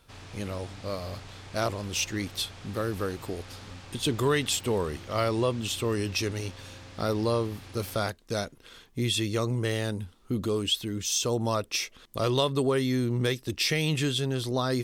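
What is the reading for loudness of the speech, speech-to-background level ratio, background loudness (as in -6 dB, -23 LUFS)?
-29.0 LUFS, 17.0 dB, -46.0 LUFS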